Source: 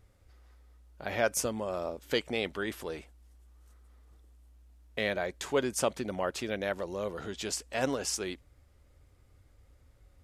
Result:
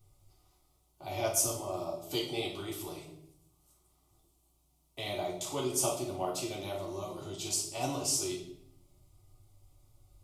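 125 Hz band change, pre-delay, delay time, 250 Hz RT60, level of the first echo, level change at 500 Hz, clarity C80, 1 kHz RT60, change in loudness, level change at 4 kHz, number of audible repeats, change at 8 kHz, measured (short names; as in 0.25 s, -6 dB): +1.0 dB, 3 ms, none, 1.1 s, none, -4.0 dB, 9.0 dB, 0.65 s, -0.5 dB, +0.5 dB, none, +4.5 dB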